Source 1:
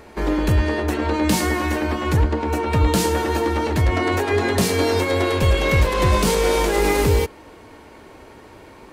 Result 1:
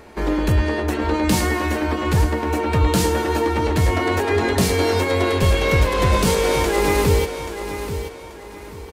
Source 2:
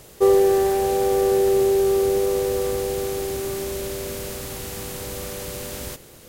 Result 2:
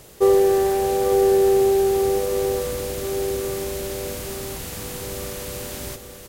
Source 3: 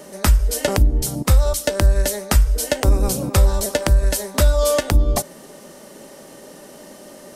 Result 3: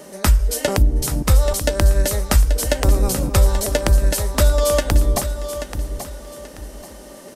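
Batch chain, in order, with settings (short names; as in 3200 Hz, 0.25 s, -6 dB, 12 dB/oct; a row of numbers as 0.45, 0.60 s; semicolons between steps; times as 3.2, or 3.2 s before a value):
feedback echo 0.833 s, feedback 31%, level -10 dB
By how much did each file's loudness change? 0.0, +0.5, 0.0 LU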